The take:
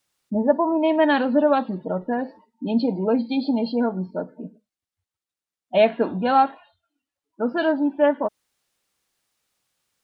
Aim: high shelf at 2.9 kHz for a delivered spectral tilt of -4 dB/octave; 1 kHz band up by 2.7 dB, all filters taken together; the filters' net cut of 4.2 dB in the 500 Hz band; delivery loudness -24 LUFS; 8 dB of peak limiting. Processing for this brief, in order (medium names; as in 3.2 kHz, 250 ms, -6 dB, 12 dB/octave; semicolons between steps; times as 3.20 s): peaking EQ 500 Hz -8.5 dB; peaking EQ 1 kHz +6.5 dB; treble shelf 2.9 kHz +4 dB; trim +1 dB; peak limiter -12.5 dBFS